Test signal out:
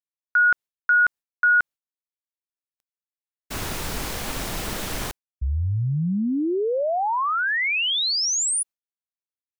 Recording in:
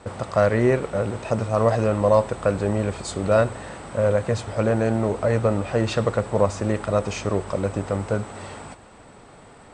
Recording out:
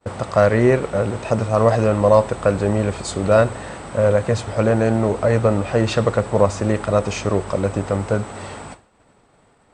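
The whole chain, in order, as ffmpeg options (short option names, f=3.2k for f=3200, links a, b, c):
-af "agate=range=-33dB:threshold=-37dB:ratio=3:detection=peak,volume=4dB"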